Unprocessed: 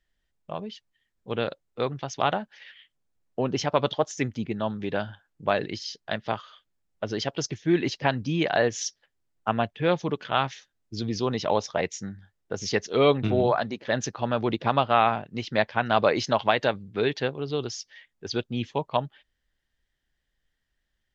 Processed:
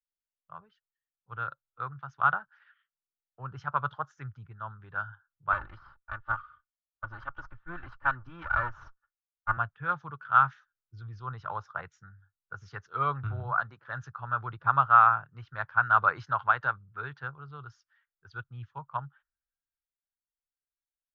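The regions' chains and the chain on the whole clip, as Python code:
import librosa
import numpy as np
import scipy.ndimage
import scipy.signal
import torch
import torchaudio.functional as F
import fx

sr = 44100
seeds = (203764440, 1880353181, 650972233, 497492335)

y = fx.chain(x, sr, fx.lower_of_two(delay_ms=3.4),
    fx.lowpass(hz=3600.0, slope=12),
    fx.env_lowpass(base_hz=1600.0, full_db=-24.0), at=(5.52, 9.57))
y = fx.noise_reduce_blind(y, sr, reduce_db=9)
y = fx.curve_eq(y, sr, hz=(140.0, 220.0, 390.0, 630.0, 1400.0, 2000.0, 4200.0, 7500.0), db=(0, -21, -17, -14, 13, -12, -19, -24))
y = fx.band_widen(y, sr, depth_pct=40)
y = y * 10.0 ** (-5.5 / 20.0)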